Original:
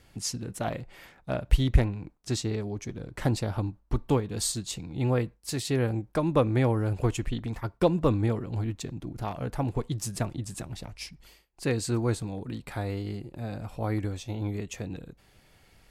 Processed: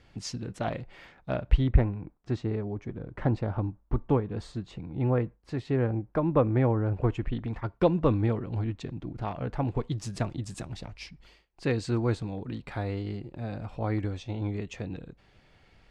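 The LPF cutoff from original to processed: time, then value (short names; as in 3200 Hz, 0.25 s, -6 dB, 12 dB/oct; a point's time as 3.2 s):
1.3 s 4500 Hz
1.73 s 1700 Hz
6.99 s 1700 Hz
7.73 s 3300 Hz
9.6 s 3300 Hz
10.63 s 7200 Hz
10.99 s 4100 Hz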